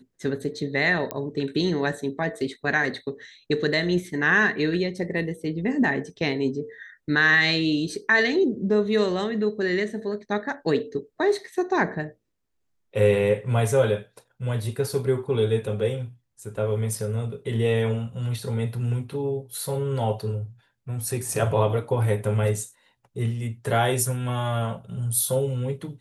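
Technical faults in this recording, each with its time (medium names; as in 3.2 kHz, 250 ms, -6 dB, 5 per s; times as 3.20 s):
1.11 s: pop -12 dBFS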